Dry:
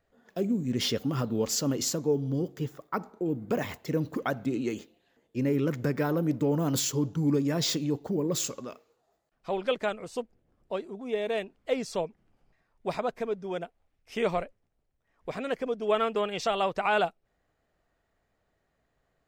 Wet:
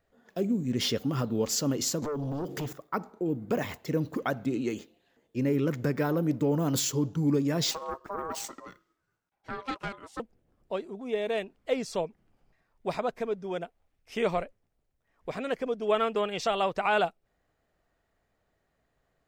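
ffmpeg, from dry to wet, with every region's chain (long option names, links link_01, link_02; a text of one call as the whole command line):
ffmpeg -i in.wav -filter_complex "[0:a]asettb=1/sr,asplit=3[link_01][link_02][link_03];[link_01]atrim=end=2.024[link_04];[link_02]atrim=start=2.02:end=2.73,asetpts=PTS-STARTPTS,afade=type=in:duration=0.004:curve=qsin,afade=type=out:start_time=0.706:duration=0.004:curve=qsin,lowshelf=frequency=71:gain=-11,acompressor=threshold=-39dB:ratio=6:attack=3.2:release=140:knee=1:detection=peak,aeval=exprs='0.0355*sin(PI/2*3.16*val(0)/0.0355)':channel_layout=same[link_05];[link_03]atrim=start=2.726[link_06];[link_04][link_05]acrossfade=duration=0.004:curve1=hsin:curve2=qsin[link_07];[link_07][link_06]acrossfade=duration=0.004:curve1=qsin:curve2=hsin,asettb=1/sr,asplit=3[link_08][link_09][link_10];[link_08]atrim=end=7.714[link_11];[link_09]atrim=start=7.71:end=10.2,asetpts=PTS-STARTPTS,afade=type=in:duration=0.004:curve=qsin,afade=type=out:start_time=2.486:duration=0.004:curve=qsin,aeval=exprs='(tanh(15.8*val(0)+0.7)-tanh(0.7))/15.8':channel_layout=same,aeval=exprs='val(0)*sin(2*PI*800*n/s)':channel_layout=same[link_12];[link_10]atrim=start=10.196[link_13];[link_11][link_12]acrossfade=duration=0.004:curve1=hsin:curve2=qsin[link_14];[link_14][link_13]acrossfade=duration=0.004:curve1=qsin:curve2=hsin" out.wav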